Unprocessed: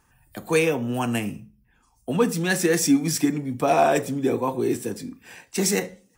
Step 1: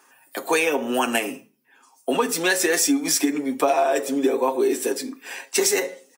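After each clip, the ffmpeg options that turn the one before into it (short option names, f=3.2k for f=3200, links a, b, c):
-af "highpass=f=320:w=0.5412,highpass=f=320:w=1.3066,aecho=1:1:7.4:0.55,acompressor=threshold=-25dB:ratio=10,volume=8.5dB"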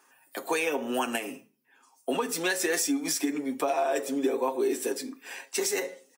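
-af "alimiter=limit=-10.5dB:level=0:latency=1:release=181,volume=-6dB"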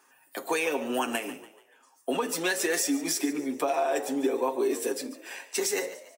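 -filter_complex "[0:a]asplit=5[a][b][c][d][e];[b]adelay=144,afreqshift=63,volume=-15.5dB[f];[c]adelay=288,afreqshift=126,volume=-23.2dB[g];[d]adelay=432,afreqshift=189,volume=-31dB[h];[e]adelay=576,afreqshift=252,volume=-38.7dB[i];[a][f][g][h][i]amix=inputs=5:normalize=0"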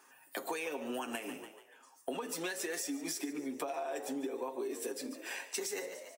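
-af "acompressor=threshold=-36dB:ratio=6"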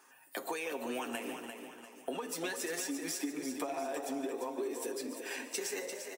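-af "aecho=1:1:346|692|1038|1384|1730:0.422|0.177|0.0744|0.0312|0.0131"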